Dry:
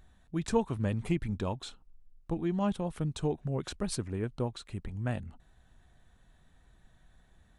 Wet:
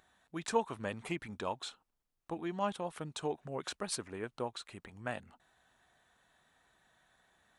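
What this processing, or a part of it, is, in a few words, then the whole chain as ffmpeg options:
filter by subtraction: -filter_complex "[0:a]asplit=2[link_01][link_02];[link_02]lowpass=1000,volume=-1[link_03];[link_01][link_03]amix=inputs=2:normalize=0"

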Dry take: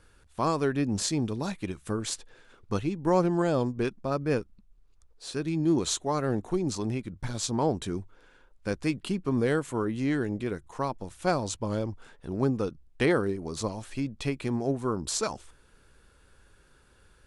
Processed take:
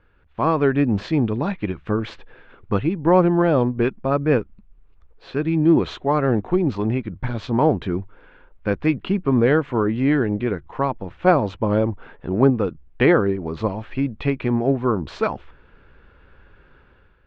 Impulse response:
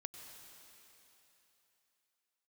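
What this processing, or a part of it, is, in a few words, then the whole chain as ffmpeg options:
action camera in a waterproof case: -filter_complex "[0:a]asettb=1/sr,asplit=3[link_01][link_02][link_03];[link_01]atrim=end=11.064[link_04];[link_02]atrim=start=11.06:end=12.5,asetpts=PTS-STARTPTS,afade=type=in:duration=0.004:curve=qsin,afade=type=out:start_time=1.436:duration=0.004:curve=qsin,equalizer=frequency=510:width=0.36:gain=3.5[link_05];[link_03]atrim=start=12.496[link_06];[link_04][link_05]acrossfade=duration=0.004:curve1=hsin:curve2=qsin[link_07];[link_07][link_06]acrossfade=duration=0.004:curve1=qsin:curve2=hsin,lowpass=frequency=2800:width=0.5412,lowpass=frequency=2800:width=1.3066,dynaudnorm=framelen=110:gausssize=7:maxgain=9dB" -ar 48000 -c:a aac -b:a 128k

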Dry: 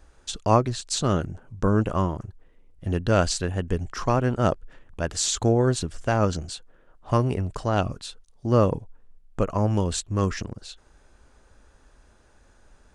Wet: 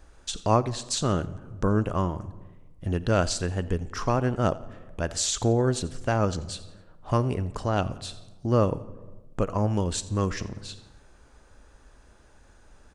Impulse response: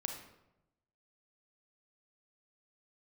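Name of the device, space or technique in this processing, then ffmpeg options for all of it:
compressed reverb return: -filter_complex "[0:a]asplit=2[link_01][link_02];[1:a]atrim=start_sample=2205[link_03];[link_02][link_03]afir=irnorm=-1:irlink=0,acompressor=threshold=-33dB:ratio=6,volume=-1.5dB[link_04];[link_01][link_04]amix=inputs=2:normalize=0,aecho=1:1:87|174|261:0.0944|0.0406|0.0175,volume=-3.5dB"

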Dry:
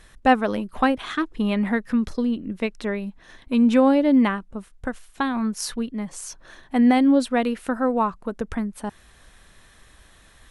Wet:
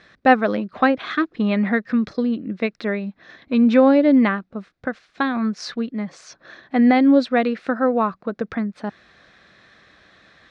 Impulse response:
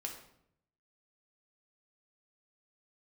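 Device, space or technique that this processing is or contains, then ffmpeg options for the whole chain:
kitchen radio: -af "highpass=170,equalizer=frequency=250:width_type=q:width=4:gain=-3,equalizer=frequency=410:width_type=q:width=4:gain=-3,equalizer=frequency=930:width_type=q:width=4:gain=-9,equalizer=frequency=3000:width_type=q:width=4:gain=-8,lowpass=frequency=4500:width=0.5412,lowpass=frequency=4500:width=1.3066,volume=5.5dB"

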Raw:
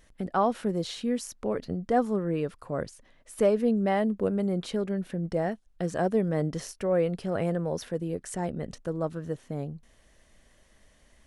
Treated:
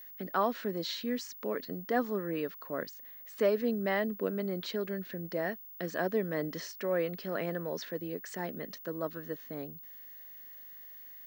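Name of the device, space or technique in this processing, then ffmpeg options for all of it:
old television with a line whistle: -af "highpass=frequency=210:width=0.5412,highpass=frequency=210:width=1.3066,equalizer=frequency=220:width_type=q:width=4:gain=-4,equalizer=frequency=350:width_type=q:width=4:gain=-3,equalizer=frequency=510:width_type=q:width=4:gain=-4,equalizer=frequency=780:width_type=q:width=4:gain=-7,equalizer=frequency=1800:width_type=q:width=4:gain=6,equalizer=frequency=4300:width_type=q:width=4:gain=5,lowpass=frequency=6500:width=0.5412,lowpass=frequency=6500:width=1.3066,aeval=exprs='val(0)+0.00562*sin(2*PI*15625*n/s)':channel_layout=same,volume=-1.5dB"

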